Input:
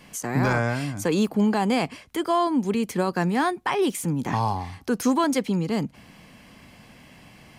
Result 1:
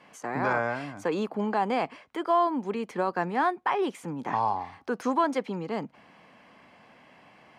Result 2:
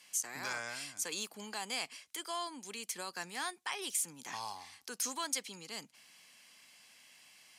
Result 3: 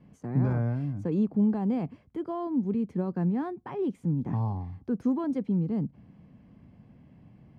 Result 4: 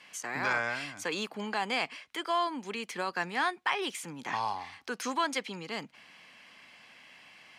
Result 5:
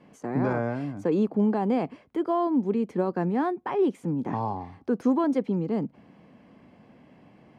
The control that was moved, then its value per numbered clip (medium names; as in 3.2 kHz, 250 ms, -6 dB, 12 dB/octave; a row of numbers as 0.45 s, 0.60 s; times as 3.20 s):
band-pass filter, frequency: 910 Hz, 7.8 kHz, 120 Hz, 2.5 kHz, 360 Hz